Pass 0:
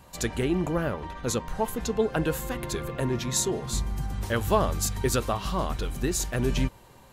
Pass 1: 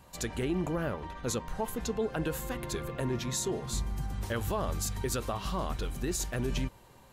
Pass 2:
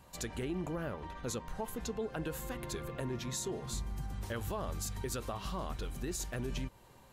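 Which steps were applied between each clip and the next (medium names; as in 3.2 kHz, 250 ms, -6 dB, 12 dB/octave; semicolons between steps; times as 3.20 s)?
peak limiter -18 dBFS, peak gain reduction 8 dB; trim -4 dB
compression 1.5:1, threshold -37 dBFS, peak gain reduction 4 dB; trim -2.5 dB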